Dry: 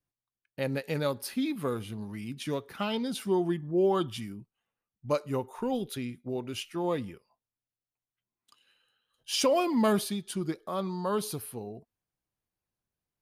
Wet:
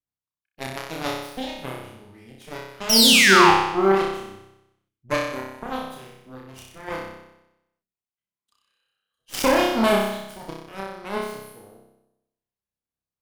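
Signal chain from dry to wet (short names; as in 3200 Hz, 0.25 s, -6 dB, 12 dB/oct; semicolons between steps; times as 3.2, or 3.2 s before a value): painted sound fall, 2.89–3.51, 760–6000 Hz -22 dBFS; added harmonics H 5 -43 dB, 6 -22 dB, 7 -15 dB, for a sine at -12 dBFS; flutter echo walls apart 5.3 m, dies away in 0.88 s; gain +4 dB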